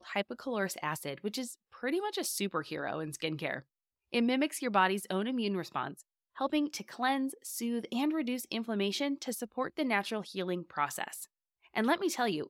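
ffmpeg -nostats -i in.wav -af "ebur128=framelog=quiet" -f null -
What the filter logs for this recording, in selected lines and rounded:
Integrated loudness:
  I:         -33.9 LUFS
  Threshold: -44.1 LUFS
Loudness range:
  LRA:         3.1 LU
  Threshold: -54.0 LUFS
  LRA low:   -35.7 LUFS
  LRA high:  -32.7 LUFS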